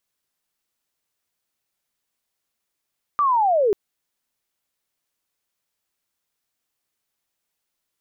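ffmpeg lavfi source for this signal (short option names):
-f lavfi -i "aevalsrc='pow(10,(-15.5+0.5*t/0.54)/20)*sin(2*PI*(1200*t-820*t*t/(2*0.54)))':d=0.54:s=44100"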